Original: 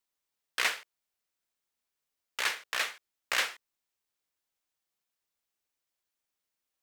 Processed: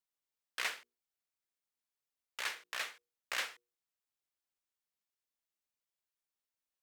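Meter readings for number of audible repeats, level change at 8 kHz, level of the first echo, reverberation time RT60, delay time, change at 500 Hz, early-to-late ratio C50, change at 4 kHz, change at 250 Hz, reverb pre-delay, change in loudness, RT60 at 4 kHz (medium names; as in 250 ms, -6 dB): no echo, -8.0 dB, no echo, no reverb, no echo, -8.5 dB, no reverb, -8.0 dB, -9.0 dB, no reverb, -8.0 dB, no reverb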